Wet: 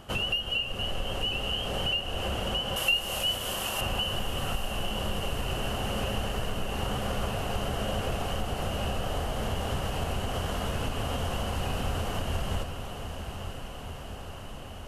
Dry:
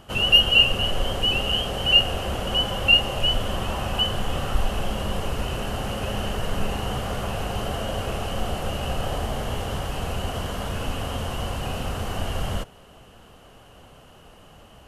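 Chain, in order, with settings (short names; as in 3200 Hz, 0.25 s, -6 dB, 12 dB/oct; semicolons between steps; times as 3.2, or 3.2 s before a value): compressor 10:1, threshold -27 dBFS, peak gain reduction 17 dB; 2.76–3.81 RIAA curve recording; on a send: diffused feedback echo 0.923 s, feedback 70%, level -9 dB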